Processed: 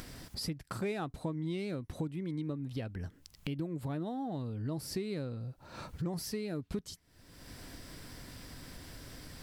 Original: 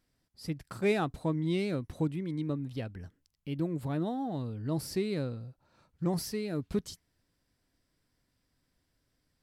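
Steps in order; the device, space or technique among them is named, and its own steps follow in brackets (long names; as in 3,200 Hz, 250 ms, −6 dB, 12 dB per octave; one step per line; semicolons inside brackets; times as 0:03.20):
upward and downward compression (upward compression, threshold −41 dBFS; downward compressor 4 to 1, threshold −46 dBFS, peak gain reduction 19 dB)
level +9.5 dB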